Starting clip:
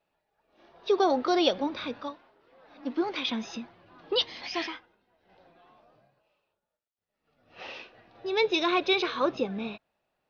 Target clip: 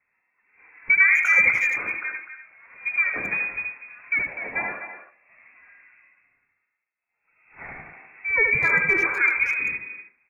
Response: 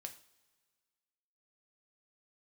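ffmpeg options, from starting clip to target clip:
-filter_complex "[0:a]aeval=exprs='0.188*(abs(mod(val(0)/0.188+3,4)-2)-1)':c=same,asplit=2[a][b];[1:a]atrim=start_sample=2205,asetrate=52920,aresample=44100,adelay=76[c];[b][c]afir=irnorm=-1:irlink=0,volume=1.5dB[d];[a][d]amix=inputs=2:normalize=0,lowpass=f=2.3k:t=q:w=0.5098,lowpass=f=2.3k:t=q:w=0.6013,lowpass=f=2.3k:t=q:w=0.9,lowpass=f=2.3k:t=q:w=2.563,afreqshift=-2700,asplit=2[e][f];[f]adelay=250,highpass=300,lowpass=3.4k,asoftclip=type=hard:threshold=-20.5dB,volume=-10dB[g];[e][g]amix=inputs=2:normalize=0,volume=5dB"

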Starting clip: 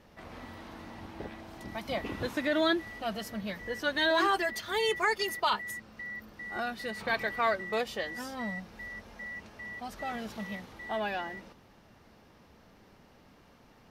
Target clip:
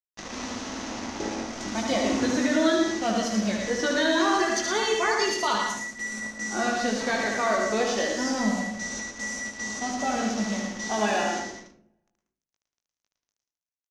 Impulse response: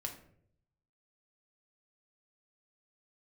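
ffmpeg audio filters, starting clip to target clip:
-filter_complex "[0:a]lowshelf=f=180:t=q:w=3:g=-7.5,alimiter=limit=-23.5dB:level=0:latency=1:release=28,acrusher=bits=6:mix=0:aa=0.5,lowpass=f=6.2k:t=q:w=5.6,aecho=1:1:19|75:0.531|0.631,asplit=2[a][b];[1:a]atrim=start_sample=2205,adelay=111[c];[b][c]afir=irnorm=-1:irlink=0,volume=-3dB[d];[a][d]amix=inputs=2:normalize=0,adynamicequalizer=threshold=0.00631:dfrequency=1900:dqfactor=0.7:tfrequency=1900:tqfactor=0.7:attack=5:release=100:ratio=0.375:range=2.5:mode=cutabove:tftype=highshelf,volume=5.5dB"

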